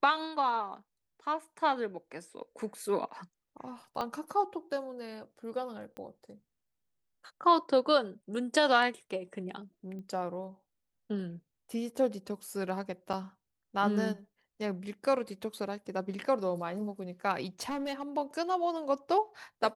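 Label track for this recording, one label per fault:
4.010000	4.010000	pop -22 dBFS
5.970000	5.970000	pop -30 dBFS
9.990000	9.990000	pop -36 dBFS
13.130000	13.140000	dropout 5.6 ms
17.600000	18.030000	clipped -31 dBFS

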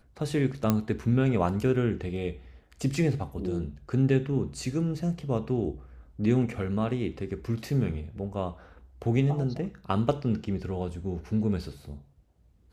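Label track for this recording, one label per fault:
0.700000	0.700000	pop -10 dBFS

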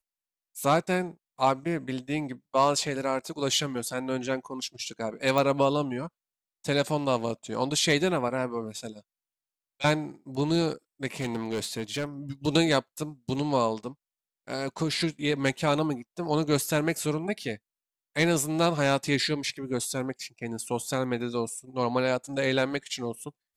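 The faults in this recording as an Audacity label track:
5.380000	5.380000	pop
11.200000	12.050000	clipped -25.5 dBFS

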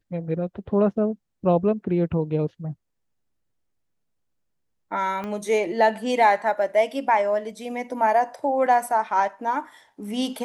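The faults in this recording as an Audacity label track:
5.240000	5.240000	pop -20 dBFS

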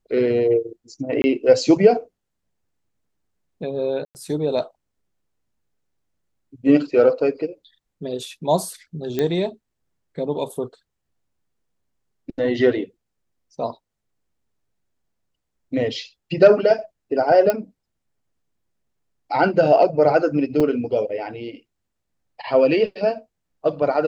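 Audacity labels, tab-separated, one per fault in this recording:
1.220000	1.240000	dropout 20 ms
4.050000	4.150000	dropout 99 ms
9.190000	9.190000	pop -10 dBFS
17.500000	17.500000	pop -7 dBFS
20.600000	20.600000	dropout 4.4 ms

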